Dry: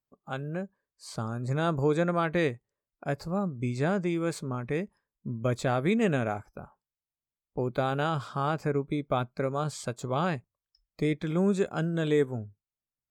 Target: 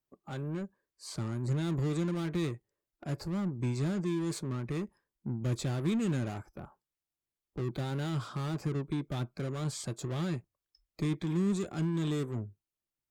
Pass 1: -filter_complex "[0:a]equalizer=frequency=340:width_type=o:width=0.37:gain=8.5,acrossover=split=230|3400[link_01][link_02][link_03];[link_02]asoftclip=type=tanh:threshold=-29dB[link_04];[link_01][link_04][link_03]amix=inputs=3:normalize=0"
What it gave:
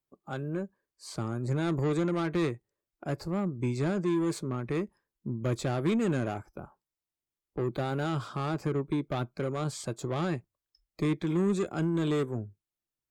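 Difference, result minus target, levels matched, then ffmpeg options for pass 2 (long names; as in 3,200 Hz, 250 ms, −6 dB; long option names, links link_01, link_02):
soft clipping: distortion −5 dB
-filter_complex "[0:a]equalizer=frequency=340:width_type=o:width=0.37:gain=8.5,acrossover=split=230|3400[link_01][link_02][link_03];[link_02]asoftclip=type=tanh:threshold=-40.5dB[link_04];[link_01][link_04][link_03]amix=inputs=3:normalize=0"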